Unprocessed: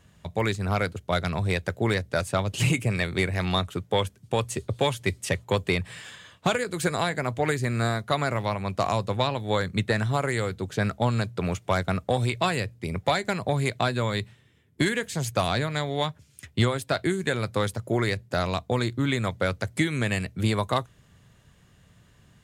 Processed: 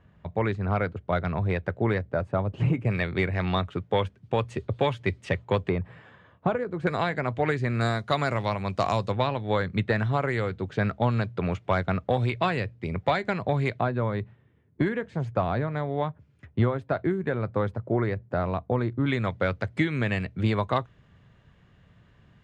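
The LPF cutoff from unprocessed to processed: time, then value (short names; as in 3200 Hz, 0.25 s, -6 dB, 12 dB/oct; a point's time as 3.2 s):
1800 Hz
from 2.1 s 1100 Hz
from 2.85 s 2600 Hz
from 5.69 s 1100 Hz
from 6.87 s 2900 Hz
from 7.81 s 5800 Hz
from 9.12 s 2800 Hz
from 13.8 s 1300 Hz
from 19.06 s 2800 Hz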